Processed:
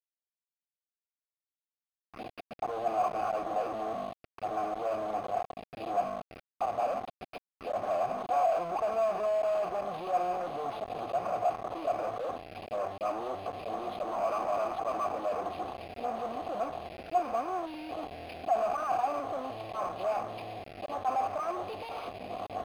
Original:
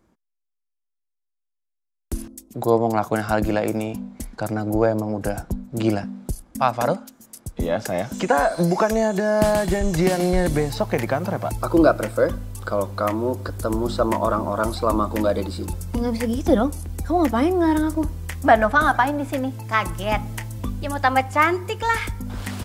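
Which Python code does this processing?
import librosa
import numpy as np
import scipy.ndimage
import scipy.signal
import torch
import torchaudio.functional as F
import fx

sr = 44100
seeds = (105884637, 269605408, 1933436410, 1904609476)

p1 = fx.low_shelf(x, sr, hz=270.0, db=-6.5)
p2 = fx.auto_swell(p1, sr, attack_ms=165.0)
p3 = fx.over_compress(p2, sr, threshold_db=-27.0, ratio=-1.0)
p4 = p2 + F.gain(torch.from_numpy(p3), -2.5).numpy()
p5 = fx.schmitt(p4, sr, flips_db=-33.0)
p6 = fx.vowel_filter(p5, sr, vowel='a')
p7 = fx.quant_dither(p6, sr, seeds[0], bits=8, dither='none')
p8 = fx.env_phaser(p7, sr, low_hz=480.0, high_hz=4300.0, full_db=-30.5)
p9 = np.interp(np.arange(len(p8)), np.arange(len(p8))[::6], p8[::6])
y = F.gain(torch.from_numpy(p9), 3.5).numpy()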